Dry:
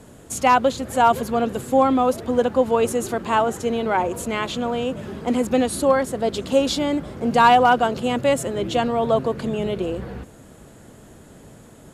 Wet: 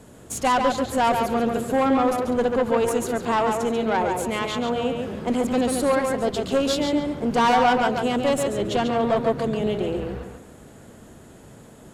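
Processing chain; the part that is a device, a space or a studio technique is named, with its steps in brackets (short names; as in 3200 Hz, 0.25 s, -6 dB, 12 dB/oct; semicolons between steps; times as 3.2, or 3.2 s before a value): rockabilly slapback (tube stage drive 15 dB, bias 0.45; tape echo 0.14 s, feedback 33%, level -3 dB, low-pass 4100 Hz)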